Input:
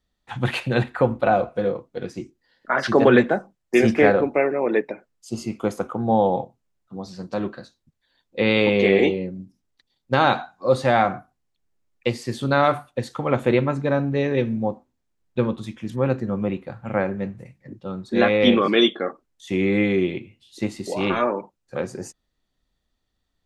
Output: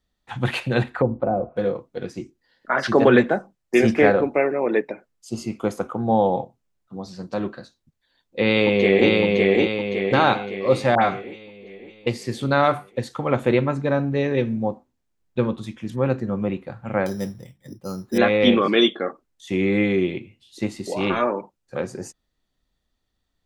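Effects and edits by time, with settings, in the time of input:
0.89–1.57 treble ducked by the level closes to 570 Hz, closed at -18 dBFS
8.45–9.11 echo throw 0.56 s, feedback 50%, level -1 dB
10.95–12.07 dispersion highs, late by 78 ms, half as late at 2000 Hz
17.06–18.18 careless resampling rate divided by 8×, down filtered, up hold

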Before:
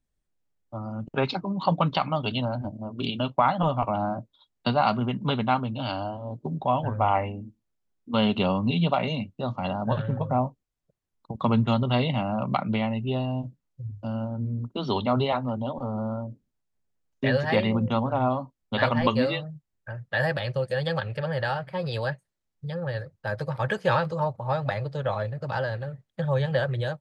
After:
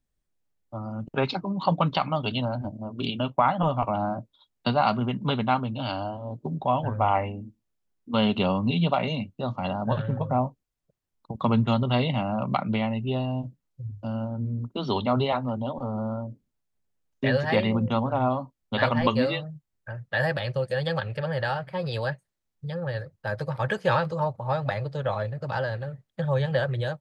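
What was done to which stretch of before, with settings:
3.13–3.71 bell 4200 Hz -9 dB 0.41 oct

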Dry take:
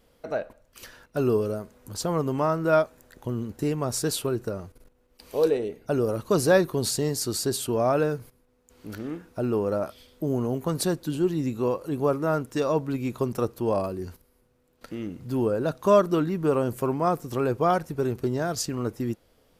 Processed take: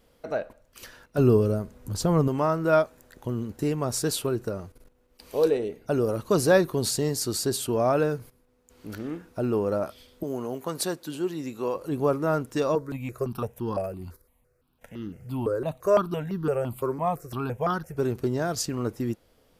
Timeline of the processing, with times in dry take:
1.18–2.28 low shelf 220 Hz +11 dB
10.23–11.75 HPF 470 Hz 6 dB/oct
12.75–17.97 step phaser 5.9 Hz 760–2300 Hz

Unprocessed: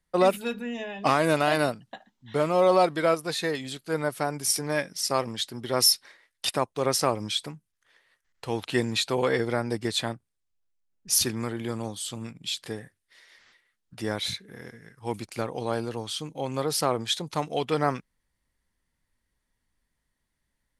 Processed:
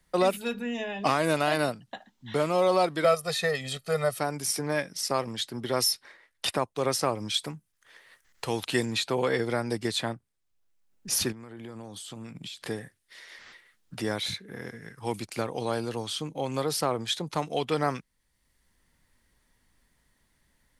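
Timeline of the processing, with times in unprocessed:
3.04–4.19 comb 1.6 ms, depth 94%
7.34–8.86 high shelf 4100 Hz +8 dB
11.32–12.61 compressor, threshold -42 dBFS
whole clip: three-band squash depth 40%; gain -1.5 dB

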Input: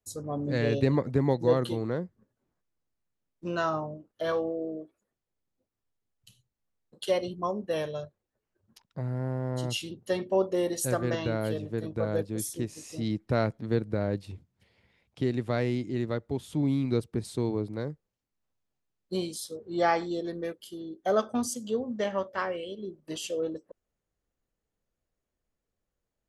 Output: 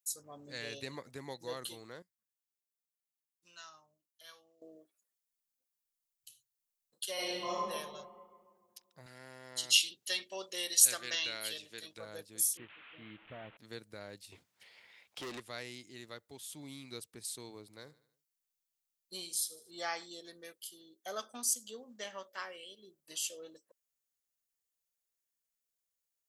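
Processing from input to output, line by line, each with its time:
2.02–4.62 passive tone stack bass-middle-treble 5-5-5
7.14–7.57 reverb throw, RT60 1.8 s, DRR -10.5 dB
9.06–11.98 weighting filter D
12.57–13.57 delta modulation 16 kbps, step -40 dBFS
14.32–15.4 overdrive pedal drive 29 dB, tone 1100 Hz, clips at -16.5 dBFS
17.61–19.71 feedback echo 76 ms, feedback 49%, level -18 dB
21.2–22.58 resonant low shelf 160 Hz -7 dB, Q 1.5
whole clip: pre-emphasis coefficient 0.97; gain +4 dB

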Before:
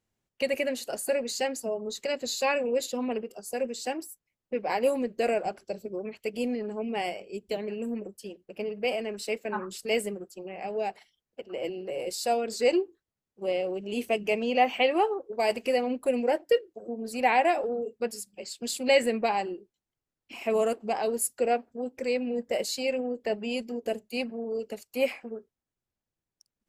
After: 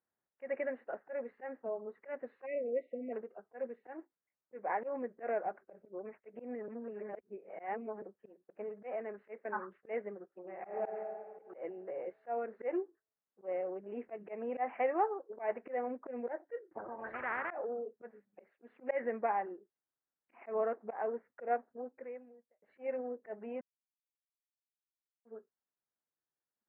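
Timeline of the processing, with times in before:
2.45–3.13 spectral delete 720–1900 Hz
6.68–8.02 reverse
10.4–10.85 reverb throw, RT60 2 s, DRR -0.5 dB
16.71–17.51 spectral compressor 10:1
21.77–22.62 fade out quadratic
23.61–25.25 mute
whole clip: steep low-pass 1900 Hz 48 dB/oct; auto swell 0.116 s; HPF 760 Hz 6 dB/oct; gain -2.5 dB

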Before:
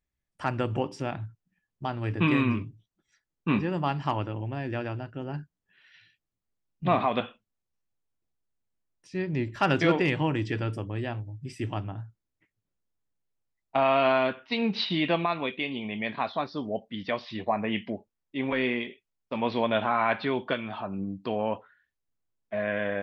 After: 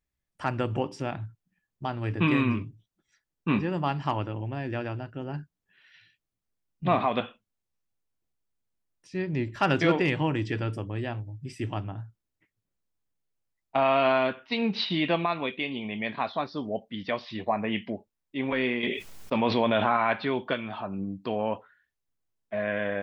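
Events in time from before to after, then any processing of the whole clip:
18.83–19.97 fast leveller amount 70%

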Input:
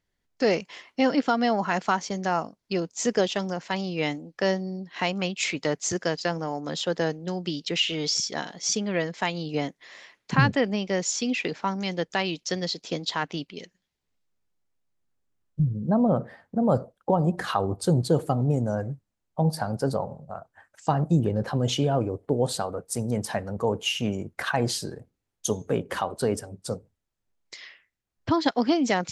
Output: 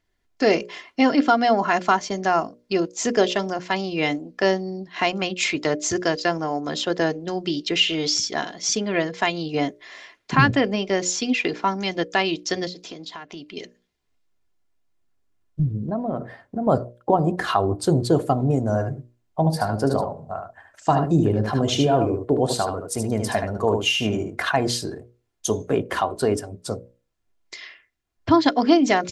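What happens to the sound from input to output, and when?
12.67–13.53 compressor, threshold -38 dBFS
15.85–16.67 compressor 10:1, threshold -25 dBFS
18.62–24.47 echo 75 ms -6 dB
whole clip: high shelf 7000 Hz -6 dB; notches 60/120/180/240/300/360/420/480/540/600 Hz; comb 2.9 ms, depth 39%; gain +5 dB

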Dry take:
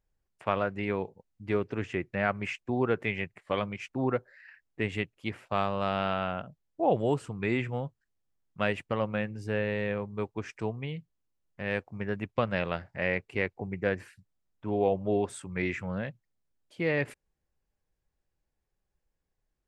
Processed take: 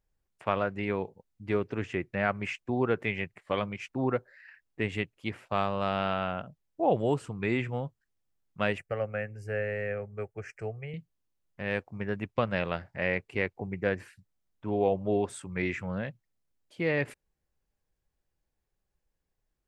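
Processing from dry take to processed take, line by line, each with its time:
8.78–10.94 fixed phaser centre 990 Hz, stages 6

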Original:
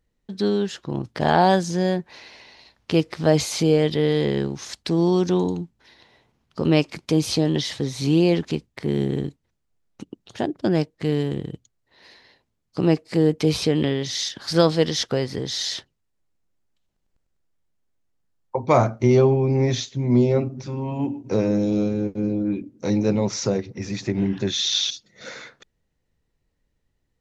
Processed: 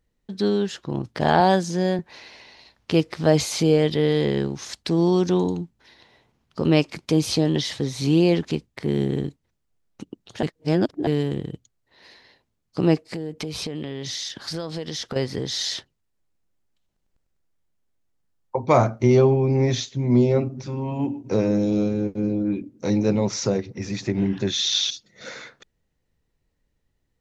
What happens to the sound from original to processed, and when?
1.4–1.99 Chebyshev high-pass 180 Hz
10.43–11.07 reverse
13.02–15.16 compressor 10:1, threshold -26 dBFS

